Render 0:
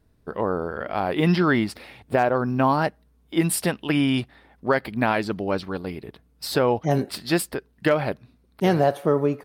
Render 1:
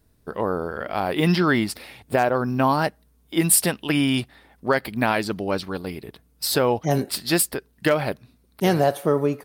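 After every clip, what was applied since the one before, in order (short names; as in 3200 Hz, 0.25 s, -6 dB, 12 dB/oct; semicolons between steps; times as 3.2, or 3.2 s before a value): high shelf 5100 Hz +11.5 dB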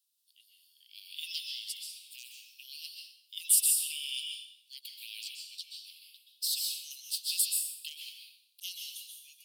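steep high-pass 2800 Hz 72 dB/oct; plate-style reverb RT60 0.65 s, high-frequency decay 1×, pre-delay 0.115 s, DRR 1 dB; gain -6.5 dB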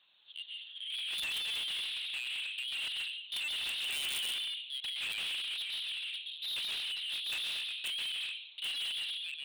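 LPC vocoder at 8 kHz pitch kept; overdrive pedal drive 36 dB, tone 3100 Hz, clips at -24.5 dBFS; wrapped overs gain 29 dB; gain -2.5 dB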